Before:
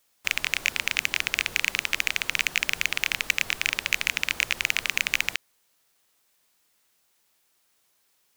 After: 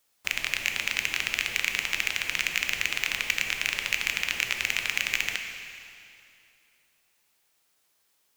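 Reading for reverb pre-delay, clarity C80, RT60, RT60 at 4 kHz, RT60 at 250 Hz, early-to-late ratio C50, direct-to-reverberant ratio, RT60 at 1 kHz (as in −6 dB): 7 ms, 6.5 dB, 2.6 s, 2.4 s, 2.7 s, 5.5 dB, 4.5 dB, 2.6 s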